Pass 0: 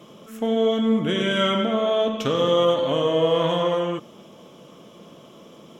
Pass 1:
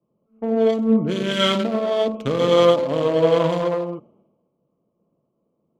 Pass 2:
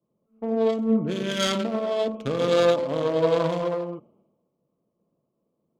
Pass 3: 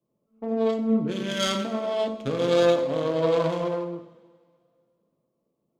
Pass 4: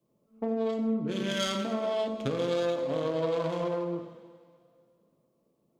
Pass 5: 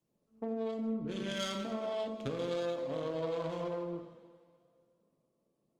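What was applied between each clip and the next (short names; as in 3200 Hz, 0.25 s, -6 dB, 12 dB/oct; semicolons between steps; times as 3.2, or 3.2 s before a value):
Wiener smoothing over 25 samples; three-band expander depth 100%; gain +2.5 dB
self-modulated delay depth 0.14 ms; gain -4.5 dB
two-slope reverb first 0.5 s, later 2.1 s, from -17 dB, DRR 6 dB; gain -2 dB
compressor 4:1, threshold -32 dBFS, peak gain reduction 14 dB; gain +4 dB
gain -6.5 dB; Opus 32 kbps 48000 Hz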